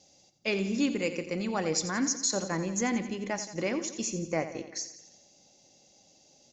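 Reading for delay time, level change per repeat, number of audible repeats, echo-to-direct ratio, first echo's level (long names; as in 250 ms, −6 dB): 87 ms, −5.0 dB, 5, −10.5 dB, −12.0 dB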